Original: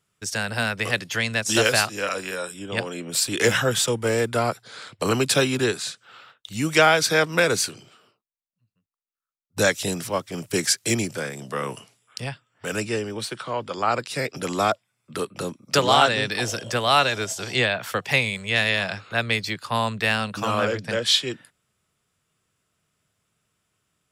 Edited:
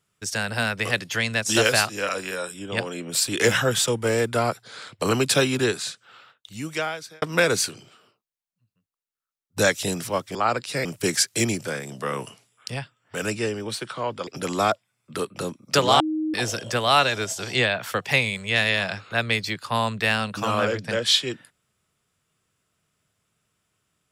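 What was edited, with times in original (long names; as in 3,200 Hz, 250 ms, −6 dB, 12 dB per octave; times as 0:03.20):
0:05.81–0:07.22: fade out
0:13.77–0:14.27: move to 0:10.35
0:16.00–0:16.34: beep over 312 Hz −22.5 dBFS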